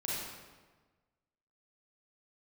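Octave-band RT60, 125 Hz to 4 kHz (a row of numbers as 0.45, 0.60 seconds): 1.6, 1.5, 1.4, 1.3, 1.2, 0.95 seconds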